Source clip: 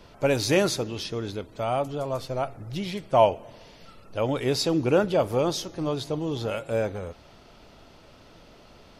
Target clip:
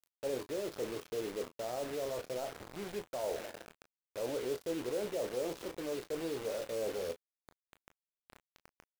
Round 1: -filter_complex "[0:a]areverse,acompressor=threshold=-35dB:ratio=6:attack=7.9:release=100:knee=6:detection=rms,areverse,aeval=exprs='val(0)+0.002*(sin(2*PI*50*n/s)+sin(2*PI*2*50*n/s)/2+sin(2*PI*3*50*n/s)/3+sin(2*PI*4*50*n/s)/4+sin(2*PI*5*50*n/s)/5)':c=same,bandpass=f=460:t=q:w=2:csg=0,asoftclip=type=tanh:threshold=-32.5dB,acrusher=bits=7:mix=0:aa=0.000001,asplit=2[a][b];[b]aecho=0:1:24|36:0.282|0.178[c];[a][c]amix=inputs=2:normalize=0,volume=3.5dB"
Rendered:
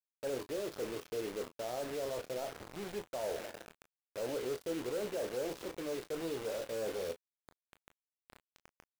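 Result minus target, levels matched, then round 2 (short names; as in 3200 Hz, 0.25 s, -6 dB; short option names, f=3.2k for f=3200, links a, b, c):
soft clip: distortion +11 dB
-filter_complex "[0:a]areverse,acompressor=threshold=-35dB:ratio=6:attack=7.9:release=100:knee=6:detection=rms,areverse,aeval=exprs='val(0)+0.002*(sin(2*PI*50*n/s)+sin(2*PI*2*50*n/s)/2+sin(2*PI*3*50*n/s)/3+sin(2*PI*4*50*n/s)/4+sin(2*PI*5*50*n/s)/5)':c=same,bandpass=f=460:t=q:w=2:csg=0,asoftclip=type=tanh:threshold=-26.5dB,acrusher=bits=7:mix=0:aa=0.000001,asplit=2[a][b];[b]aecho=0:1:24|36:0.282|0.178[c];[a][c]amix=inputs=2:normalize=0,volume=3.5dB"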